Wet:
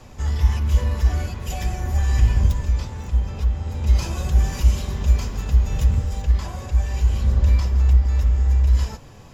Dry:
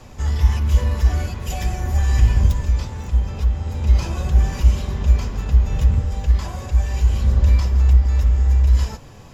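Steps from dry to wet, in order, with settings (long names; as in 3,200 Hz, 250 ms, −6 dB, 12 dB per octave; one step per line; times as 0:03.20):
0:03.86–0:06.22: high-shelf EQ 4,600 Hz +7.5 dB
level −2 dB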